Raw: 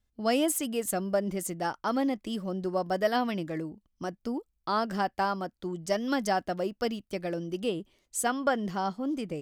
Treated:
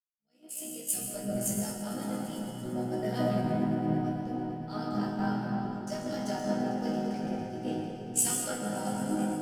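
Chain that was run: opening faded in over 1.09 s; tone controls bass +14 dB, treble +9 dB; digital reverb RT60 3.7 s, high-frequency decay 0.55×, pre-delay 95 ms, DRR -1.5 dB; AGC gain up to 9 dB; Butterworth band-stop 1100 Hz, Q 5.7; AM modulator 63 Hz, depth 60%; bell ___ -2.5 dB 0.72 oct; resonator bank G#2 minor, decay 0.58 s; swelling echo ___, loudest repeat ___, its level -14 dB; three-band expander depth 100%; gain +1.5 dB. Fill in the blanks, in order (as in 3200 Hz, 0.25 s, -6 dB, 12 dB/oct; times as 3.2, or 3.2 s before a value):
82 Hz, 0.113 s, 5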